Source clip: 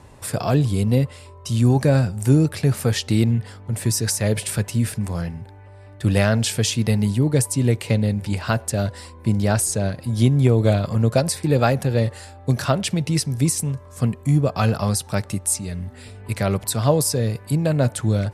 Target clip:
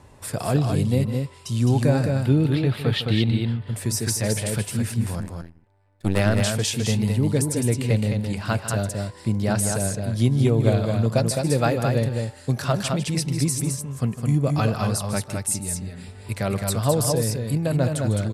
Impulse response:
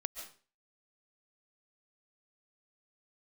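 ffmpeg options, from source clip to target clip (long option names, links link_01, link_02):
-filter_complex "[0:a]asettb=1/sr,asplit=3[link_01][link_02][link_03];[link_01]atrim=end=2.124[link_04];[link_02]atrim=start=2.12:end=3.61,asetpts=PTS-STARTPTS,afade=type=in:duration=0.004:curve=qsin,afade=type=out:start_time=1.486:duration=0.004:curve=qsin,highshelf=frequency=4800:width_type=q:width=3:gain=-10[link_05];[link_03]atrim=start=3.606[link_06];[link_04][link_05]acrossfade=duration=0.004:curve1=hsin:curve2=qsin[link_07];[link_07][link_06]acrossfade=duration=0.004:curve1=qsin:curve2=hsin,asettb=1/sr,asplit=3[link_08][link_09][link_10];[link_08]atrim=end=5.204[link_11];[link_09]atrim=start=5.2:end=6.2,asetpts=PTS-STARTPTS,afade=type=in:duration=0.004:curve=qsin,afade=type=out:start_time=0.996:duration=0.004:curve=qsin,aeval=exprs='0.596*(cos(1*acos(clip(val(0)/0.596,-1,1)))-cos(1*PI/2))+0.0211*(cos(3*acos(clip(val(0)/0.596,-1,1)))-cos(3*PI/2))+0.0106*(cos(5*acos(clip(val(0)/0.596,-1,1)))-cos(5*PI/2))+0.0668*(cos(6*acos(clip(val(0)/0.596,-1,1)))-cos(6*PI/2))+0.075*(cos(7*acos(clip(val(0)/0.596,-1,1)))-cos(7*PI/2))':channel_layout=same[link_12];[link_10]atrim=start=6.196[link_13];[link_11][link_12]acrossfade=duration=0.004:curve1=hsin:curve2=qsin[link_14];[link_14][link_13]acrossfade=duration=0.004:curve1=qsin:curve2=hsin,aecho=1:1:152|212:0.224|0.596,volume=-3.5dB"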